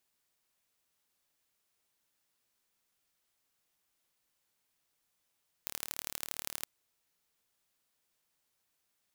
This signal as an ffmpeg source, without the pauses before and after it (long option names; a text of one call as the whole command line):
ffmpeg -f lavfi -i "aevalsrc='0.398*eq(mod(n,1182),0)*(0.5+0.5*eq(mod(n,3546),0))':duration=0.97:sample_rate=44100" out.wav